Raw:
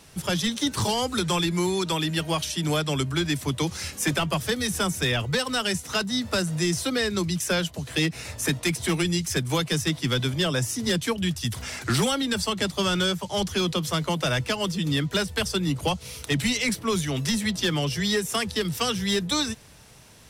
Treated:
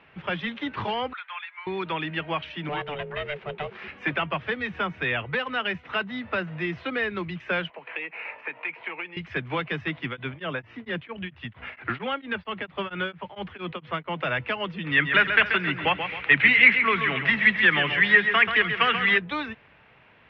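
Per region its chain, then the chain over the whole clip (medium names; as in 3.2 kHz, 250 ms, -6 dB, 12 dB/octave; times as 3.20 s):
1.13–1.67 s: Bessel high-pass 1.5 kHz, order 6 + distance through air 330 m
2.69–3.88 s: CVSD coder 64 kbps + ring modulator 290 Hz
7.70–9.17 s: compression 10:1, threshold -28 dBFS + cabinet simulation 440–4200 Hz, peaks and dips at 480 Hz +5 dB, 920 Hz +8 dB, 2.4 kHz +7 dB, 3.6 kHz -8 dB
10.06–14.18 s: low-pass 4 kHz + tremolo of two beating tones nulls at 4.4 Hz
14.84–19.18 s: peaking EQ 1.9 kHz +12.5 dB 1.5 oct + feedback delay 134 ms, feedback 40%, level -8 dB
whole clip: steep low-pass 2.6 kHz 36 dB/octave; tilt EQ +3 dB/octave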